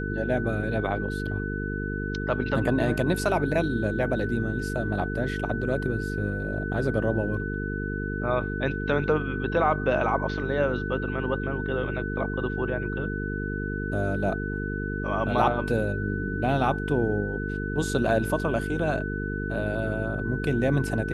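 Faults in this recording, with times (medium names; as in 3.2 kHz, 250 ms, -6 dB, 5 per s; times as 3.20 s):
buzz 50 Hz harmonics 9 -31 dBFS
whine 1.5 kHz -34 dBFS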